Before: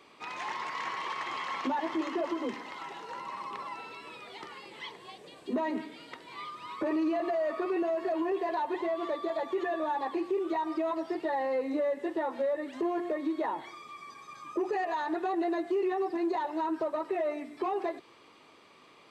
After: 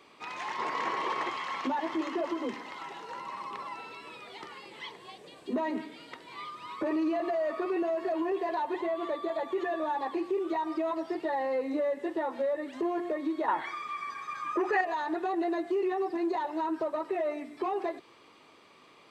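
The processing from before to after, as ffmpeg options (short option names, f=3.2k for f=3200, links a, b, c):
-filter_complex "[0:a]asettb=1/sr,asplit=3[a][b][c];[a]atrim=end=0.584[d];[b]atrim=start=0.58:end=1.3,asetpts=PTS-STARTPTS,afade=t=in:d=0.004:c=qsin,afade=t=out:st=0.716:d=0.004:c=qsin,equalizer=f=390:w=0.59:g=11[e];[c]atrim=start=1.296[f];[d][e]acrossfade=d=0.004:c1=hsin:c2=qsin[g];[g][f]acrossfade=d=0.004:c1=qsin:c2=hsin,asettb=1/sr,asplit=3[h][i][j];[h]atrim=end=8.814[k];[i]atrim=start=8.81:end=9.56,asetpts=PTS-STARTPTS,afade=t=in:d=0.004:c=qsin,afade=t=out:st=0.746:d=0.004:c=qsin,equalizer=f=5.3k:t=o:w=0.37:g=-6.5[l];[j]atrim=start=9.556[m];[k][l]acrossfade=d=0.004:c1=hsin:c2=qsin[n];[n][m]acrossfade=d=0.004:c1=qsin:c2=hsin,asettb=1/sr,asplit=3[o][p][q];[o]atrim=end=13.484[r];[p]atrim=start=13.48:end=14.81,asetpts=PTS-STARTPTS,afade=t=in:d=0.004:c=qsin,afade=t=out:st=1.326:d=0.004:c=qsin,equalizer=f=1.6k:t=o:w=1.4:g=14[s];[q]atrim=start=14.806[t];[r][s]acrossfade=d=0.004:c1=hsin:c2=qsin[u];[u][t]acrossfade=d=0.004:c1=qsin:c2=hsin"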